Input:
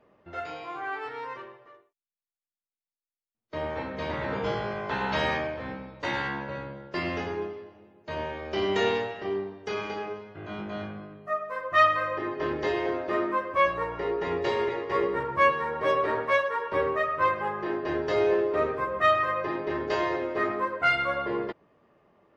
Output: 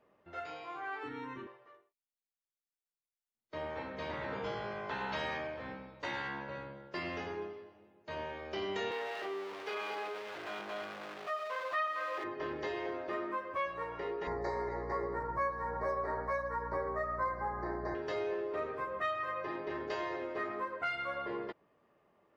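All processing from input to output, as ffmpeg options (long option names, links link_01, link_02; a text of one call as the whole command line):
ffmpeg -i in.wav -filter_complex "[0:a]asettb=1/sr,asplit=3[link_01][link_02][link_03];[link_01]atrim=end=1.034[link_04];[link_02]atrim=start=1.03:end=1.47,asetpts=PTS-STARTPTS,afade=type=in:duration=0.004:curve=qsin,afade=type=out:start_time=0.436:duration=0.004:curve=qsin,asuperstop=centerf=4900:order=8:qfactor=5.8,lowshelf=frequency=390:width_type=q:width=3:gain=12.5[link_05];[link_03]atrim=start=1.466[link_06];[link_04][link_05]acrossfade=duration=0.004:curve1=hsin:curve2=qsin[link_07];[link_07][link_06]acrossfade=duration=0.004:curve1=qsin:curve2=hsin,asettb=1/sr,asplit=3[link_08][link_09][link_10];[link_08]atrim=end=8.914[link_11];[link_09]atrim=start=8.91:end=12.24,asetpts=PTS-STARTPTS,afade=type=in:duration=0.004:curve=qsin,afade=type=out:start_time=3.326:duration=0.004:curve=qsin,aeval=exprs='val(0)+0.5*0.0316*sgn(val(0))':channel_layout=same,highpass=frequency=150:poles=1,acrossover=split=350 4500:gain=0.178 1 0.126[link_12][link_13][link_14];[link_12][link_13][link_14]amix=inputs=3:normalize=0[link_15];[link_10]atrim=start=12.236[link_16];[link_11][link_15]acrossfade=duration=0.004:curve1=hsin:curve2=qsin[link_17];[link_17][link_16]acrossfade=duration=0.004:curve1=qsin:curve2=hsin,asettb=1/sr,asplit=3[link_18][link_19][link_20];[link_18]atrim=end=14.274[link_21];[link_19]atrim=start=14.27:end=17.95,asetpts=PTS-STARTPTS,afade=type=in:duration=0.004:curve=qsin,afade=type=out:start_time=3.676:duration=0.004:curve=qsin,asuperstop=centerf=3000:order=8:qfactor=1.5,equalizer=frequency=770:width=1.4:gain=7,aeval=exprs='val(0)+0.0251*(sin(2*PI*60*n/s)+sin(2*PI*2*60*n/s)/2+sin(2*PI*3*60*n/s)/3+sin(2*PI*4*60*n/s)/4+sin(2*PI*5*60*n/s)/5)':channel_layout=same[link_22];[link_20]atrim=start=17.946[link_23];[link_21][link_22]acrossfade=duration=0.004:curve1=hsin:curve2=qsin[link_24];[link_24][link_23]acrossfade=duration=0.004:curve1=qsin:curve2=hsin,lowshelf=frequency=340:gain=-4.5,acompressor=threshold=-29dB:ratio=2.5,volume=-6dB" out.wav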